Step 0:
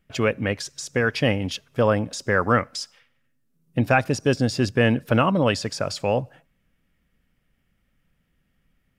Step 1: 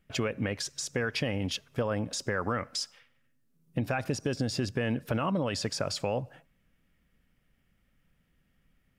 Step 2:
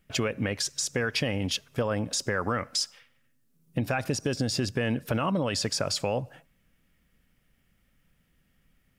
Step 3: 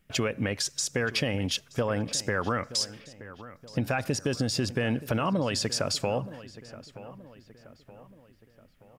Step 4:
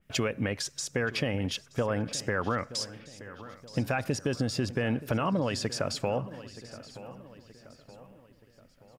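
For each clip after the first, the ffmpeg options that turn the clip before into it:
-af "alimiter=limit=0.211:level=0:latency=1:release=52,acompressor=threshold=0.0562:ratio=4,volume=0.841"
-af "highshelf=f=4100:g=5.5,volume=1.26"
-filter_complex "[0:a]asplit=2[s0][s1];[s1]adelay=925,lowpass=f=2800:p=1,volume=0.158,asplit=2[s2][s3];[s3]adelay=925,lowpass=f=2800:p=1,volume=0.49,asplit=2[s4][s5];[s5]adelay=925,lowpass=f=2800:p=1,volume=0.49,asplit=2[s6][s7];[s7]adelay=925,lowpass=f=2800:p=1,volume=0.49[s8];[s0][s2][s4][s6][s8]amix=inputs=5:normalize=0"
-af "aecho=1:1:990|1980|2970:0.0708|0.0269|0.0102,adynamicequalizer=threshold=0.00501:dfrequency=2900:dqfactor=0.7:tfrequency=2900:tqfactor=0.7:attack=5:release=100:ratio=0.375:range=3:mode=cutabove:tftype=highshelf,volume=0.891"

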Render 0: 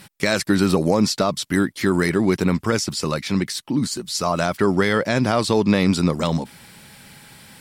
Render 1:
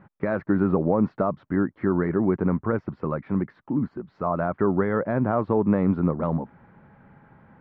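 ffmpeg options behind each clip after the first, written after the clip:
-af "lowpass=f=1400:w=0.5412,lowpass=f=1400:w=1.3066,volume=0.668"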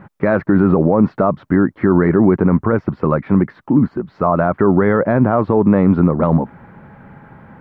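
-af "alimiter=level_in=5.01:limit=0.891:release=50:level=0:latency=1,volume=0.794"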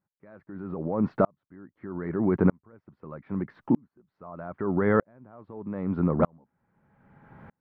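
-af "aeval=exprs='val(0)*pow(10,-40*if(lt(mod(-0.8*n/s,1),2*abs(-0.8)/1000),1-mod(-0.8*n/s,1)/(2*abs(-0.8)/1000),(mod(-0.8*n/s,1)-2*abs(-0.8)/1000)/(1-2*abs(-0.8)/1000))/20)':c=same,volume=0.562"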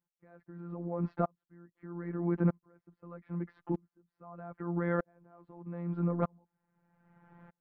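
-af "afftfilt=real='hypot(re,im)*cos(PI*b)':imag='0':win_size=1024:overlap=0.75,volume=0.596"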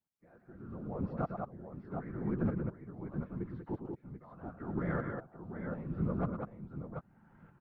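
-af "aecho=1:1:111|193|737|750:0.355|0.531|0.398|0.126,afftfilt=real='hypot(re,im)*cos(2*PI*random(0))':imag='hypot(re,im)*sin(2*PI*random(1))':win_size=512:overlap=0.75,volume=1.19"

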